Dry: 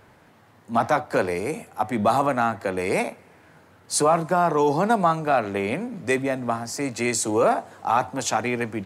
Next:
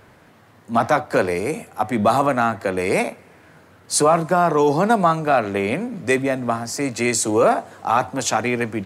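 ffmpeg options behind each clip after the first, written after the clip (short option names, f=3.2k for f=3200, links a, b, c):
-af "equalizer=f=860:w=5.6:g=-3.5,volume=4dB"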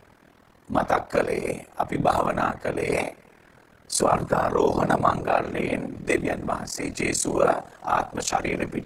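-af "afftfilt=real='hypot(re,im)*cos(2*PI*random(0))':imag='hypot(re,im)*sin(2*PI*random(1))':win_size=512:overlap=0.75,aeval=exprs='val(0)*sin(2*PI*20*n/s)':c=same,volume=4dB"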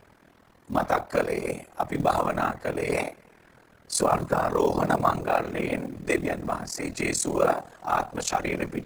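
-af "acrusher=bits=7:mode=log:mix=0:aa=0.000001,volume=-2dB"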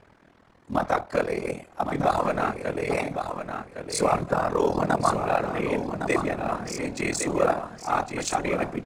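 -af "adynamicsmooth=sensitivity=8:basefreq=7.8k,aecho=1:1:1110|2220|3330:0.422|0.0886|0.0186"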